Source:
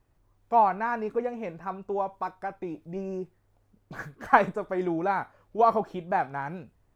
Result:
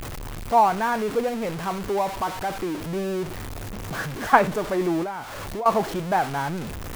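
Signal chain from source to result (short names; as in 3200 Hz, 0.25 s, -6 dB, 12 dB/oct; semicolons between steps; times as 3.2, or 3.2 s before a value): zero-crossing step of -30 dBFS; 5.03–5.66 compressor 6:1, threshold -32 dBFS, peak gain reduction 15.5 dB; gain +2.5 dB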